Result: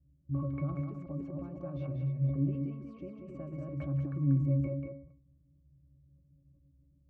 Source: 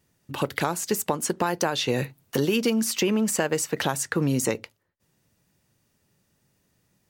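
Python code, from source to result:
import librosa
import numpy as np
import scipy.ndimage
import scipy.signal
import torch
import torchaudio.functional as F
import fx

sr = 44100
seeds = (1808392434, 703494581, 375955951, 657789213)

p1 = fx.reverse_delay(x, sr, ms=177, wet_db=-10)
p2 = fx.env_lowpass(p1, sr, base_hz=540.0, full_db=-19.5)
p3 = fx.tilt_eq(p2, sr, slope=-4.0)
p4 = fx.over_compress(p3, sr, threshold_db=-27.0, ratio=-0.5)
p5 = p3 + F.gain(torch.from_numpy(p4), -0.5).numpy()
p6 = fx.octave_resonator(p5, sr, note='C#', decay_s=0.25)
p7 = p6 + fx.echo_single(p6, sr, ms=188, db=-5.5, dry=0)
p8 = fx.sustainer(p7, sr, db_per_s=76.0)
y = F.gain(torch.from_numpy(p8), -9.0).numpy()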